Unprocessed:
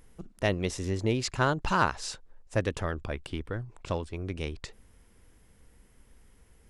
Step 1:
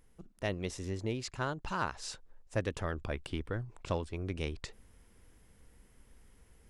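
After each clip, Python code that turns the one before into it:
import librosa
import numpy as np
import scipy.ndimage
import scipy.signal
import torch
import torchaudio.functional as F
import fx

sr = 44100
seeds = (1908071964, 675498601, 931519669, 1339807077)

y = fx.rider(x, sr, range_db=4, speed_s=0.5)
y = y * librosa.db_to_amplitude(-6.0)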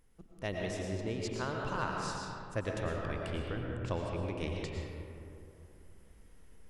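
y = fx.rev_freeverb(x, sr, rt60_s=2.8, hf_ratio=0.4, predelay_ms=70, drr_db=-1.0)
y = y * librosa.db_to_amplitude(-3.0)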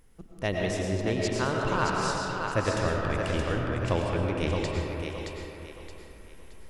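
y = fx.echo_thinned(x, sr, ms=622, feedback_pct=35, hz=380.0, wet_db=-4.5)
y = y * librosa.db_to_amplitude(8.0)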